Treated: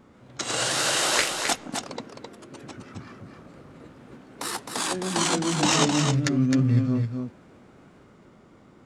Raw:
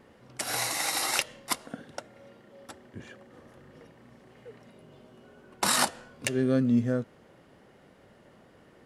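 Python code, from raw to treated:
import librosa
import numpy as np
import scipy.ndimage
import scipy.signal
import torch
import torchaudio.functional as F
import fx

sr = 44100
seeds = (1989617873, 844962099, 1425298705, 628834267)

y = fx.echo_pitch(x, sr, ms=144, semitones=2, count=3, db_per_echo=-3.0)
y = fx.formant_shift(y, sr, semitones=-6)
y = y + 10.0 ** (-5.5 / 20.0) * np.pad(y, (int(262 * sr / 1000.0), 0))[:len(y)]
y = F.gain(torch.from_numpy(y), 2.5).numpy()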